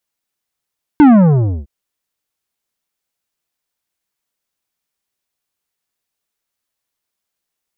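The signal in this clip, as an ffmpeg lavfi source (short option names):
-f lavfi -i "aevalsrc='0.631*clip((0.66-t)/0.63,0,1)*tanh(3.55*sin(2*PI*310*0.66/log(65/310)*(exp(log(65/310)*t/0.66)-1)))/tanh(3.55)':d=0.66:s=44100"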